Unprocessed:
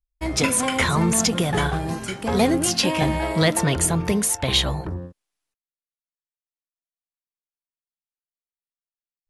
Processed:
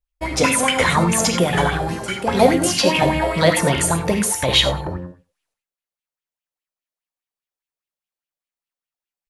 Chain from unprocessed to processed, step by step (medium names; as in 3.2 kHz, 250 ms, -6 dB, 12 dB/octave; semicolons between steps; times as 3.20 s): echo from a far wall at 16 m, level -20 dB; gated-style reverb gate 120 ms flat, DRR 5 dB; sweeping bell 4.9 Hz 500–3000 Hz +11 dB